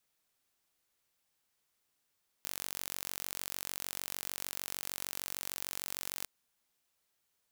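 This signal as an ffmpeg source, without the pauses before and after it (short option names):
-f lavfi -i "aevalsrc='0.266*eq(mod(n,946),0)':d=3.81:s=44100"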